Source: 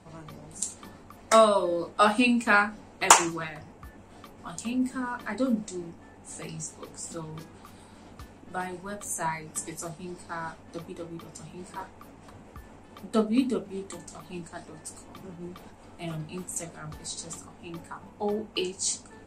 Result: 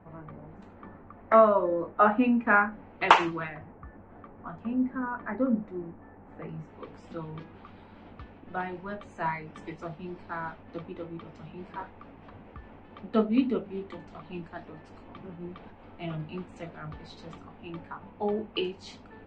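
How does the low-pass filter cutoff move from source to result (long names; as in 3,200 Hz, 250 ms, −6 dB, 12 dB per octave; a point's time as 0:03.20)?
low-pass filter 24 dB per octave
0:02.67 1,900 Hz
0:03.23 3,800 Hz
0:03.75 1,800 Hz
0:06.51 1,800 Hz
0:06.91 3,200 Hz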